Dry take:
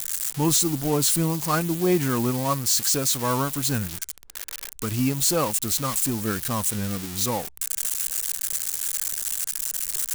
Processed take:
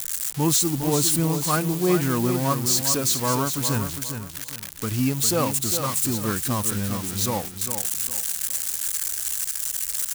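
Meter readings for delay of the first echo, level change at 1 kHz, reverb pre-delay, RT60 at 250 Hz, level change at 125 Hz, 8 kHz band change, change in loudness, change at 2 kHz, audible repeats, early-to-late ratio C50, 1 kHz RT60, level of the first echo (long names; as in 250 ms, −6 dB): 405 ms, +0.5 dB, no reverb audible, no reverb audible, +2.0 dB, +0.5 dB, +0.5 dB, +0.5 dB, 3, no reverb audible, no reverb audible, −8.0 dB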